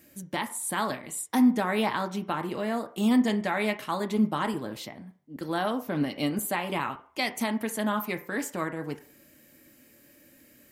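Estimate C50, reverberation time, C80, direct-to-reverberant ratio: 14.5 dB, 0.50 s, 18.5 dB, 6.5 dB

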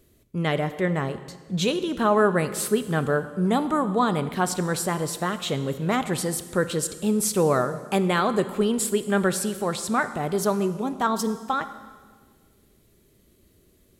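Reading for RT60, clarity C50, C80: 1.6 s, 13.0 dB, 14.0 dB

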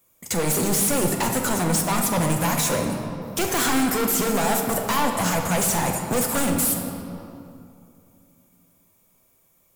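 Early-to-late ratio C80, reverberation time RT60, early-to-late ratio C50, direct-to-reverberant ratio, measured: 5.5 dB, 2.6 s, 4.0 dB, 2.0 dB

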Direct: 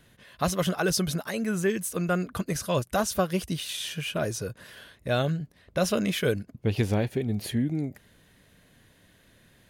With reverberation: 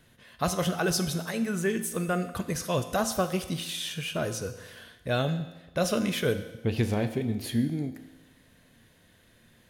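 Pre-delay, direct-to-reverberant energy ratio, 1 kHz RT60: 4 ms, 8.0 dB, 1.1 s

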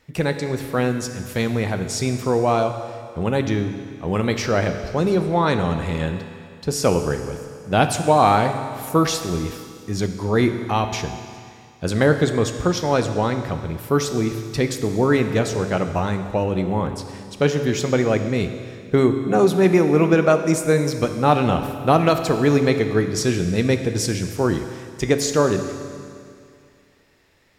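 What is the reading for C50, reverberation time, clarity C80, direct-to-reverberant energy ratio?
8.5 dB, 2.3 s, 9.5 dB, 7.0 dB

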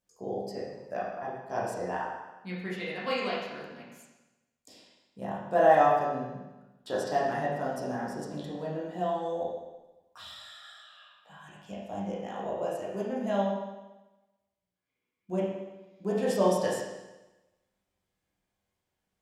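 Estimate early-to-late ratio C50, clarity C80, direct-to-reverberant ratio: 0.5 dB, 3.5 dB, −7.0 dB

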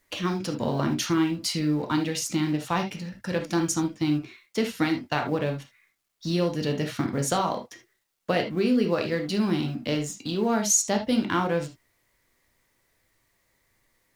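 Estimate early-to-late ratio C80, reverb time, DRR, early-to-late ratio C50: 21.5 dB, non-exponential decay, 3.5 dB, 9.0 dB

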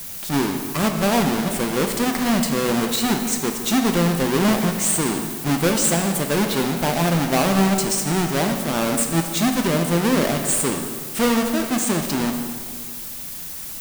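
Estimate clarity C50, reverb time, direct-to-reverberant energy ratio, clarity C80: 6.0 dB, 2.0 s, 4.0 dB, 7.5 dB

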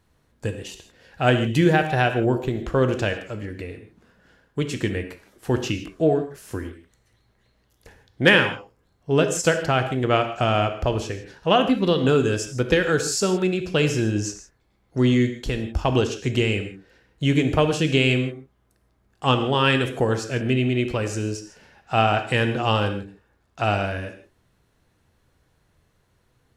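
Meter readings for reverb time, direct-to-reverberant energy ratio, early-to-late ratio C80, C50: non-exponential decay, 7.0 dB, 11.5 dB, 9.0 dB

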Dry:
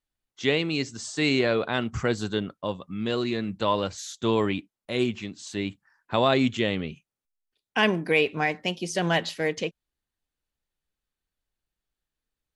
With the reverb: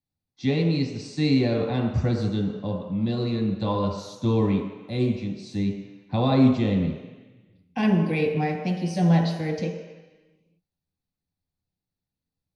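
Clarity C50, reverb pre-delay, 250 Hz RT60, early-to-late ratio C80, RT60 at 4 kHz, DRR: 4.0 dB, 3 ms, 1.3 s, 5.5 dB, 1.2 s, −1.0 dB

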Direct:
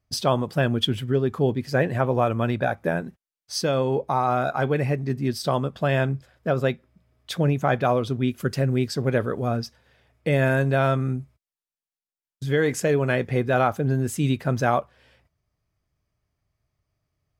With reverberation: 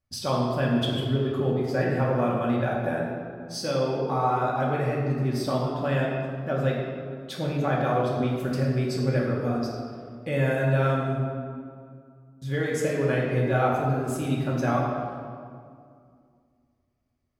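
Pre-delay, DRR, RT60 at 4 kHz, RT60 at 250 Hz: 3 ms, −4.0 dB, 1.3 s, 2.9 s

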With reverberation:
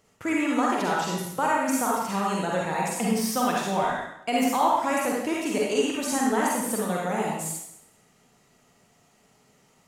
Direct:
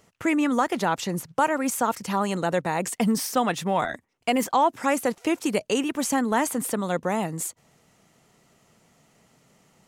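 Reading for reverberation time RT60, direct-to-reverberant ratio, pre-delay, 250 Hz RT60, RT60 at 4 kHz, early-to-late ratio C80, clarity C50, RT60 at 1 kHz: 0.75 s, −4.0 dB, 40 ms, 0.70 s, 0.75 s, 2.5 dB, −2.0 dB, 0.75 s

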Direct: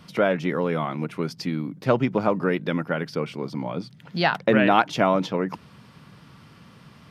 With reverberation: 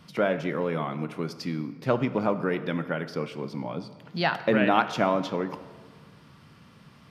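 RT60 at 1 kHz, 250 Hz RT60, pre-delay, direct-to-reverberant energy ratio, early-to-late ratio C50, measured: 1.6 s, 1.7 s, 13 ms, 11.0 dB, 13.0 dB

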